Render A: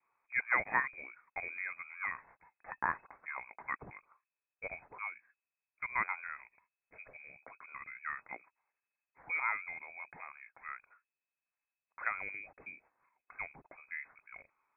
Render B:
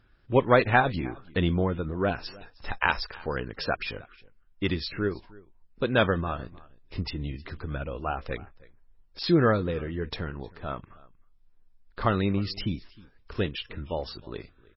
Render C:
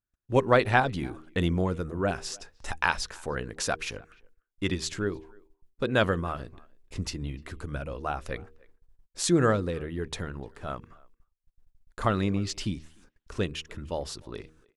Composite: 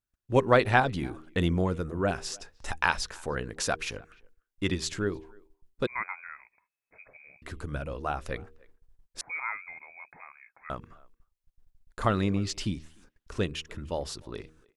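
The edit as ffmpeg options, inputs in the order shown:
-filter_complex "[0:a]asplit=2[s0][s1];[2:a]asplit=3[s2][s3][s4];[s2]atrim=end=5.872[s5];[s0]atrim=start=5.868:end=7.422[s6];[s3]atrim=start=7.418:end=9.212[s7];[s1]atrim=start=9.208:end=10.702[s8];[s4]atrim=start=10.698[s9];[s5][s6]acrossfade=d=0.004:c1=hsin:c2=hsin[s10];[s10][s7]acrossfade=d=0.004:c1=hsin:c2=hsin[s11];[s11][s8]acrossfade=d=0.004:c1=hsin:c2=hsin[s12];[s12][s9]acrossfade=d=0.004:c1=hsin:c2=hsin"

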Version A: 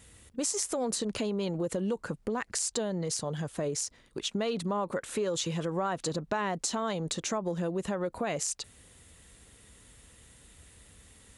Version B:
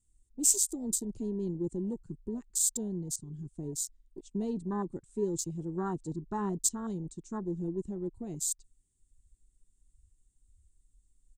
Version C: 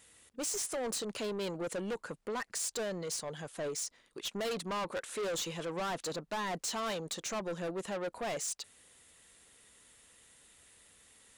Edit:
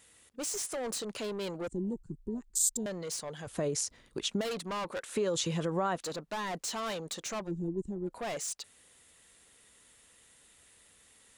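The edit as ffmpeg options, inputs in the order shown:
-filter_complex "[1:a]asplit=2[s0][s1];[0:a]asplit=2[s2][s3];[2:a]asplit=5[s4][s5][s6][s7][s8];[s4]atrim=end=1.682[s9];[s0]atrim=start=1.678:end=2.862[s10];[s5]atrim=start=2.858:end=3.472[s11];[s2]atrim=start=3.468:end=4.412[s12];[s6]atrim=start=4.408:end=5.162[s13];[s3]atrim=start=5.158:end=5.962[s14];[s7]atrim=start=5.958:end=7.52[s15];[s1]atrim=start=7.42:end=8.16[s16];[s8]atrim=start=8.06[s17];[s9][s10]acrossfade=d=0.004:c1=hsin:c2=hsin[s18];[s18][s11]acrossfade=d=0.004:c1=hsin:c2=hsin[s19];[s19][s12]acrossfade=d=0.004:c1=hsin:c2=hsin[s20];[s20][s13]acrossfade=d=0.004:c1=hsin:c2=hsin[s21];[s21][s14]acrossfade=d=0.004:c1=hsin:c2=hsin[s22];[s22][s15]acrossfade=d=0.004:c1=hsin:c2=hsin[s23];[s23][s16]acrossfade=d=0.1:c1=tri:c2=tri[s24];[s24][s17]acrossfade=d=0.1:c1=tri:c2=tri"

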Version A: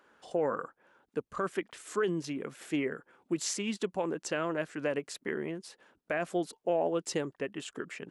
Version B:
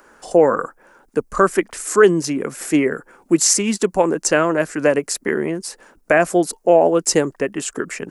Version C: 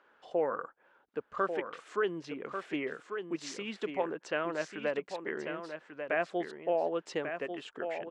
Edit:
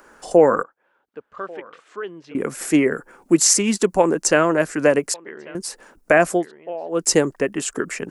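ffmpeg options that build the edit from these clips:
-filter_complex "[2:a]asplit=3[s0][s1][s2];[1:a]asplit=4[s3][s4][s5][s6];[s3]atrim=end=0.632[s7];[s0]atrim=start=0.628:end=2.352[s8];[s4]atrim=start=2.348:end=5.142[s9];[s1]atrim=start=5.138:end=5.552[s10];[s5]atrim=start=5.548:end=6.47[s11];[s2]atrim=start=6.31:end=7.04[s12];[s6]atrim=start=6.88[s13];[s7][s8]acrossfade=d=0.004:c1=hsin:c2=hsin[s14];[s14][s9]acrossfade=d=0.004:c1=hsin:c2=hsin[s15];[s15][s10]acrossfade=d=0.004:c1=hsin:c2=hsin[s16];[s16][s11]acrossfade=d=0.004:c1=hsin:c2=hsin[s17];[s17][s12]acrossfade=d=0.16:c1=tri:c2=tri[s18];[s18][s13]acrossfade=d=0.16:c1=tri:c2=tri"

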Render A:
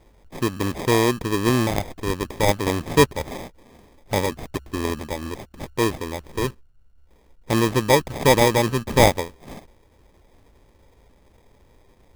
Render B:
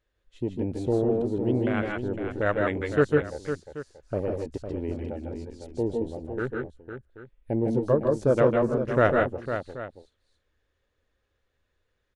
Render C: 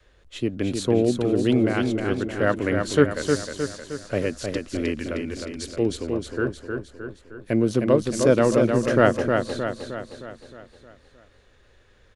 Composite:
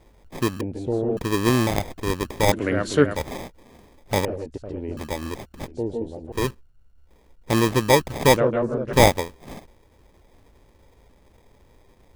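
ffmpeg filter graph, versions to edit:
-filter_complex "[1:a]asplit=4[s0][s1][s2][s3];[0:a]asplit=6[s4][s5][s6][s7][s8][s9];[s4]atrim=end=0.612[s10];[s0]atrim=start=0.608:end=1.172[s11];[s5]atrim=start=1.168:end=2.522[s12];[2:a]atrim=start=2.518:end=3.152[s13];[s6]atrim=start=3.148:end=4.252[s14];[s1]atrim=start=4.248:end=4.972[s15];[s7]atrim=start=4.968:end=5.682[s16];[s2]atrim=start=5.678:end=6.322[s17];[s8]atrim=start=6.318:end=8.372[s18];[s3]atrim=start=8.368:end=8.932[s19];[s9]atrim=start=8.928[s20];[s10][s11]acrossfade=d=0.004:c1=hsin:c2=hsin[s21];[s21][s12]acrossfade=d=0.004:c1=hsin:c2=hsin[s22];[s22][s13]acrossfade=d=0.004:c1=hsin:c2=hsin[s23];[s23][s14]acrossfade=d=0.004:c1=hsin:c2=hsin[s24];[s24][s15]acrossfade=d=0.004:c1=hsin:c2=hsin[s25];[s25][s16]acrossfade=d=0.004:c1=hsin:c2=hsin[s26];[s26][s17]acrossfade=d=0.004:c1=hsin:c2=hsin[s27];[s27][s18]acrossfade=d=0.004:c1=hsin:c2=hsin[s28];[s28][s19]acrossfade=d=0.004:c1=hsin:c2=hsin[s29];[s29][s20]acrossfade=d=0.004:c1=hsin:c2=hsin"

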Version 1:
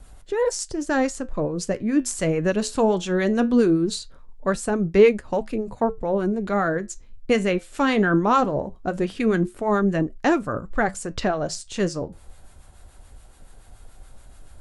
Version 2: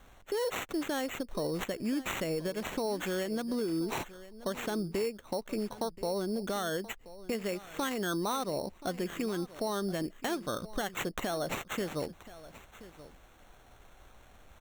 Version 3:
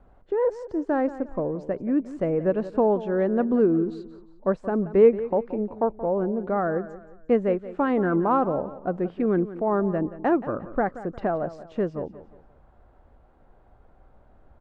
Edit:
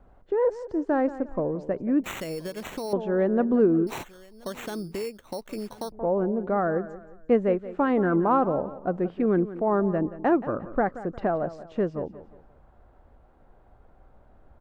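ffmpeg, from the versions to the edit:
-filter_complex "[1:a]asplit=2[s0][s1];[2:a]asplit=3[s2][s3][s4];[s2]atrim=end=2.042[s5];[s0]atrim=start=2.038:end=2.932[s6];[s3]atrim=start=2.928:end=3.872[s7];[s1]atrim=start=3.868:end=5.922[s8];[s4]atrim=start=5.918[s9];[s5][s6]acrossfade=d=0.004:c1=hsin:c2=hsin[s10];[s10][s7]acrossfade=d=0.004:c1=hsin:c2=hsin[s11];[s11][s8]acrossfade=d=0.004:c1=hsin:c2=hsin[s12];[s12][s9]acrossfade=d=0.004:c1=hsin:c2=hsin"

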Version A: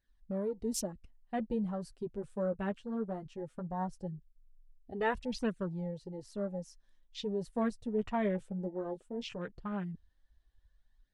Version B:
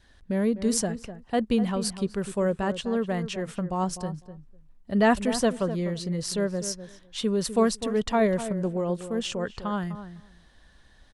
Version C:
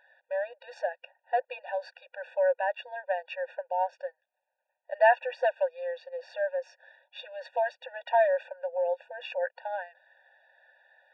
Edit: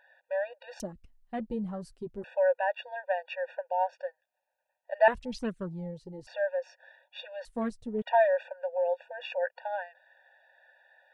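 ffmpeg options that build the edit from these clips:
-filter_complex "[0:a]asplit=3[s0][s1][s2];[2:a]asplit=4[s3][s4][s5][s6];[s3]atrim=end=0.802[s7];[s0]atrim=start=0.798:end=2.242[s8];[s4]atrim=start=2.238:end=5.082[s9];[s1]atrim=start=5.078:end=6.272[s10];[s5]atrim=start=6.268:end=7.452[s11];[s2]atrim=start=7.448:end=8.022[s12];[s6]atrim=start=8.018[s13];[s7][s8]acrossfade=d=0.004:c1=hsin:c2=hsin[s14];[s14][s9]acrossfade=d=0.004:c1=hsin:c2=hsin[s15];[s15][s10]acrossfade=d=0.004:c1=hsin:c2=hsin[s16];[s16][s11]acrossfade=d=0.004:c1=hsin:c2=hsin[s17];[s17][s12]acrossfade=d=0.004:c1=hsin:c2=hsin[s18];[s18][s13]acrossfade=d=0.004:c1=hsin:c2=hsin"

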